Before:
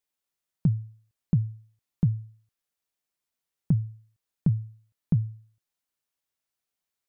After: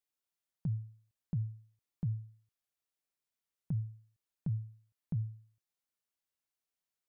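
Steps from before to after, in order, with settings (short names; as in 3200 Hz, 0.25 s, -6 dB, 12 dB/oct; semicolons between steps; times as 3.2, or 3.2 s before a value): limiter -22.5 dBFS, peak gain reduction 9 dB; gain -6 dB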